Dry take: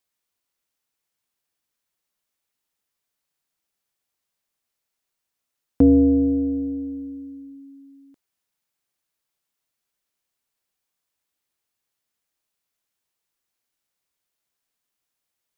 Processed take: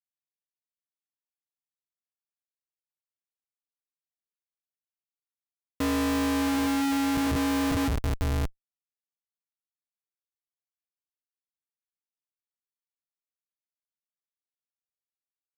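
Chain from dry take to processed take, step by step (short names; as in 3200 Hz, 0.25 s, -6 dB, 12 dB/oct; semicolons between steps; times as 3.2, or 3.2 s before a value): low shelf 400 Hz -8.5 dB; diffused feedback echo 0.844 s, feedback 50%, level -9 dB; Schmitt trigger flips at -33.5 dBFS; gain +8 dB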